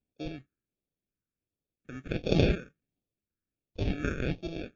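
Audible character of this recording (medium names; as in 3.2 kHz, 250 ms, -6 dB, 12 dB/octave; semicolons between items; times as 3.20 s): aliases and images of a low sample rate 1 kHz, jitter 0%; phasing stages 4, 1.4 Hz, lowest notch 740–1500 Hz; MP3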